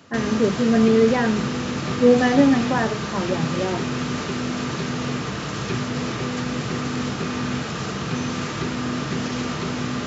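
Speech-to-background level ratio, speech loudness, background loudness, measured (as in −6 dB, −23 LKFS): 6.5 dB, −20.0 LKFS, −26.5 LKFS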